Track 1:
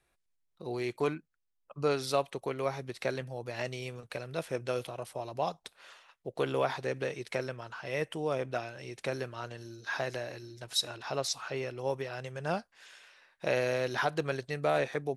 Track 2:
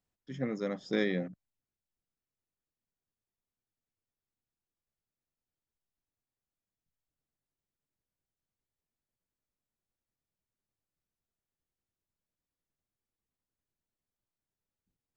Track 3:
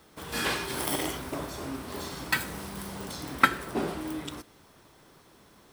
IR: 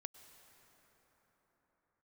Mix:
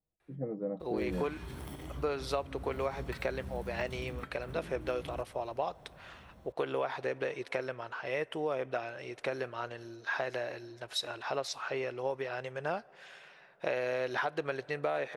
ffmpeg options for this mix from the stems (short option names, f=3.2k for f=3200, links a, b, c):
-filter_complex "[0:a]bass=f=250:g=-11,treble=f=4k:g=-11,adelay=200,volume=2dB,asplit=2[a][b];[b]volume=-11.5dB[c];[1:a]lowpass=f=650:t=q:w=1.5,aecho=1:1:6.3:0.54,volume=-5dB[d];[2:a]bass=f=250:g=12,treble=f=4k:g=-6,bandreject=f=4.9k:w=12,acompressor=threshold=-33dB:ratio=20,adelay=800,volume=-8.5dB[e];[3:a]atrim=start_sample=2205[f];[c][f]afir=irnorm=-1:irlink=0[g];[a][d][e][g]amix=inputs=4:normalize=0,equalizer=f=63:w=1.4:g=8.5,acompressor=threshold=-29dB:ratio=6"